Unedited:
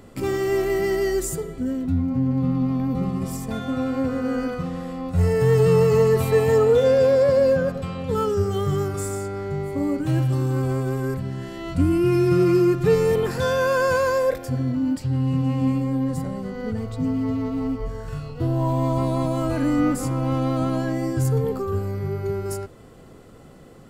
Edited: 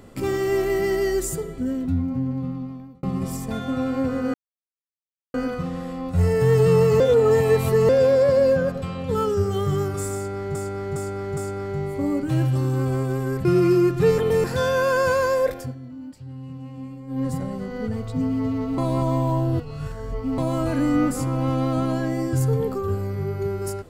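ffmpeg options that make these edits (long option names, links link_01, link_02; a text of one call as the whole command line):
ffmpeg -i in.wav -filter_complex "[0:a]asplit=15[link_01][link_02][link_03][link_04][link_05][link_06][link_07][link_08][link_09][link_10][link_11][link_12][link_13][link_14][link_15];[link_01]atrim=end=3.03,asetpts=PTS-STARTPTS,afade=type=out:start_time=1.84:duration=1.19[link_16];[link_02]atrim=start=3.03:end=4.34,asetpts=PTS-STARTPTS,afade=type=in:duration=0.004:curve=hsin,afade=type=out:start_time=1.306:duration=0.004:curve=hsin,apad=pad_dur=1[link_17];[link_03]atrim=start=4.34:end=6.002,asetpts=PTS-STARTPTS,afade=type=in:duration=0.004:curve=hsin[link_18];[link_04]atrim=start=5.998:end=6.892,asetpts=PTS-STARTPTS,areverse[link_19];[link_05]atrim=start=6.888:end=9.552[link_20];[link_06]atrim=start=9.138:end=9.552[link_21];[link_07]atrim=start=9.138:end=9.552[link_22];[link_08]atrim=start=9.138:end=11.222[link_23];[link_09]atrim=start=12.288:end=13.022[link_24];[link_10]atrim=start=13.018:end=13.282,asetpts=PTS-STARTPTS,areverse[link_25];[link_11]atrim=start=13.278:end=14.59,asetpts=PTS-STARTPTS,afade=type=out:start_time=1.142:duration=0.17:silence=0.188365[link_26];[link_12]atrim=start=14.59:end=15.91,asetpts=PTS-STARTPTS,volume=-14.5dB[link_27];[link_13]atrim=start=15.91:end=17.622,asetpts=PTS-STARTPTS,afade=type=in:duration=0.17:silence=0.188365[link_28];[link_14]atrim=start=17.618:end=19.222,asetpts=PTS-STARTPTS,areverse[link_29];[link_15]atrim=start=19.218[link_30];[link_16][link_17][link_18]concat=n=3:v=0:a=1[link_31];[link_31][link_19]acrossfade=duration=0.004:curve1=hsin:curve2=hsin[link_32];[link_32][link_20]acrossfade=duration=0.004:curve1=hsin:curve2=hsin[link_33];[link_33][link_21]acrossfade=duration=0.004:curve1=hsin:curve2=hsin[link_34];[link_34][link_22]acrossfade=duration=0.004:curve1=hsin:curve2=hsin[link_35];[link_35][link_23]acrossfade=duration=0.004:curve1=hsin:curve2=hsin[link_36];[link_36][link_24]acrossfade=duration=0.004:curve1=hsin:curve2=hsin[link_37];[link_37][link_25]acrossfade=duration=0.004:curve1=hsin:curve2=hsin[link_38];[link_26][link_27][link_28]concat=n=3:v=0:a=1[link_39];[link_38][link_39]acrossfade=duration=0.004:curve1=hsin:curve2=hsin[link_40];[link_40][link_29]acrossfade=duration=0.004:curve1=hsin:curve2=hsin[link_41];[link_41][link_30]acrossfade=duration=0.004:curve1=hsin:curve2=hsin" out.wav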